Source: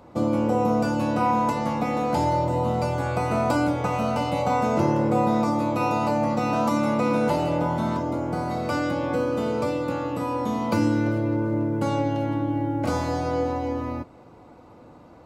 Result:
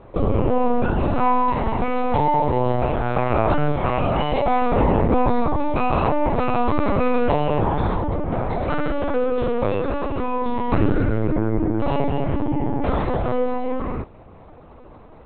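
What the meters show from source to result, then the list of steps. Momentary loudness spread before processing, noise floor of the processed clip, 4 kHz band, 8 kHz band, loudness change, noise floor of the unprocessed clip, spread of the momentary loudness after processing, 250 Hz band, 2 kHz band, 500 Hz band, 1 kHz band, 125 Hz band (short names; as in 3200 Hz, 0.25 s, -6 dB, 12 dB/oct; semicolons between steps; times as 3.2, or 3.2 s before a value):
5 LU, -44 dBFS, +0.5 dB, under -35 dB, +2.5 dB, -48 dBFS, 5 LU, +0.5 dB, +2.0 dB, +3.5 dB, +3.0 dB, +3.5 dB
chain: LPC vocoder at 8 kHz pitch kept; gain +4.5 dB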